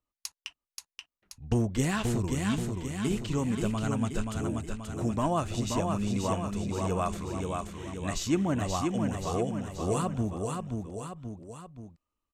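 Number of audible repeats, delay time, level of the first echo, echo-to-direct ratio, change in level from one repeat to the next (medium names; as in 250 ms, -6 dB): 3, 530 ms, -4.0 dB, -2.5 dB, -5.5 dB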